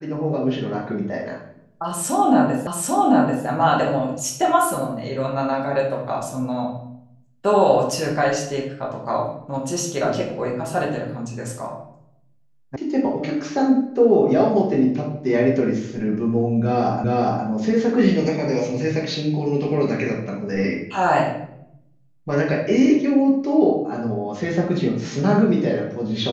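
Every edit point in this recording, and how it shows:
2.67 s: repeat of the last 0.79 s
12.76 s: sound stops dead
17.04 s: repeat of the last 0.41 s

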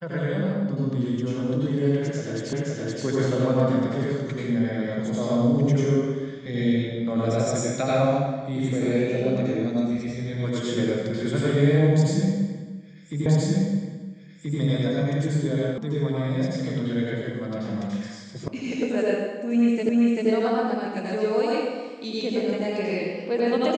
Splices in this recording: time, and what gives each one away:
2.53 s: repeat of the last 0.52 s
13.26 s: repeat of the last 1.33 s
15.78 s: sound stops dead
18.48 s: sound stops dead
19.89 s: repeat of the last 0.39 s

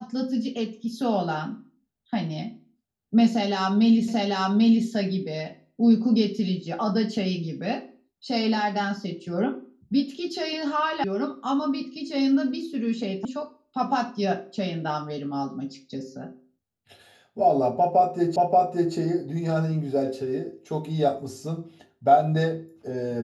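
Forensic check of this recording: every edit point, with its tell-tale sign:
4.08 s: repeat of the last 0.79 s
11.04 s: sound stops dead
13.25 s: sound stops dead
18.36 s: repeat of the last 0.58 s

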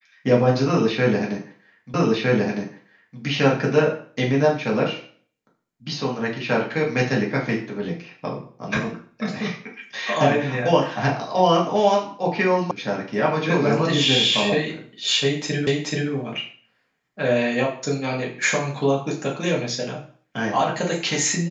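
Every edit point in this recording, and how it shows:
1.94 s: repeat of the last 1.26 s
12.71 s: sound stops dead
15.67 s: repeat of the last 0.43 s

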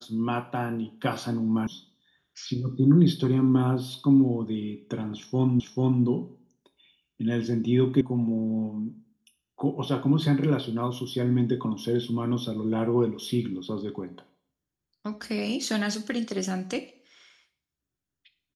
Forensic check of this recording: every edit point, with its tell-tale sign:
1.67 s: sound stops dead
5.60 s: repeat of the last 0.44 s
8.01 s: sound stops dead

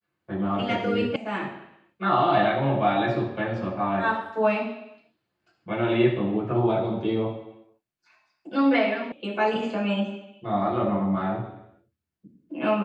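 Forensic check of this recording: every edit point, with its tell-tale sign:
1.16 s: sound stops dead
9.12 s: sound stops dead

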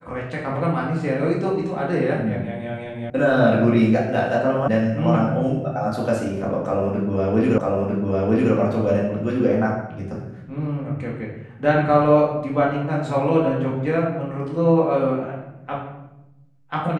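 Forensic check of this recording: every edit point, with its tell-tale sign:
3.10 s: sound stops dead
4.68 s: sound stops dead
7.58 s: repeat of the last 0.95 s

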